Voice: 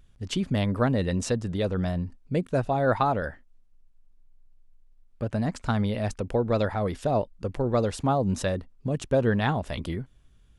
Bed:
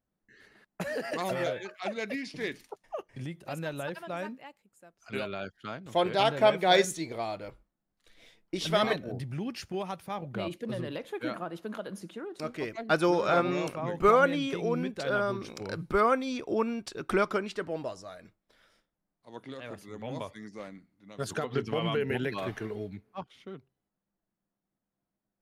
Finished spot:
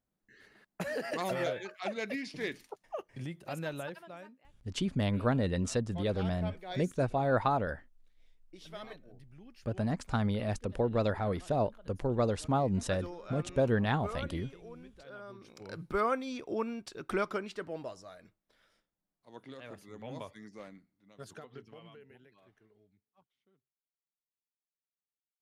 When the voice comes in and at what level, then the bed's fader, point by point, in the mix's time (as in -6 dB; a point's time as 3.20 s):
4.45 s, -5.0 dB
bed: 3.75 s -2 dB
4.47 s -19.5 dB
15.18 s -19.5 dB
15.82 s -5.5 dB
20.75 s -5.5 dB
22.29 s -30 dB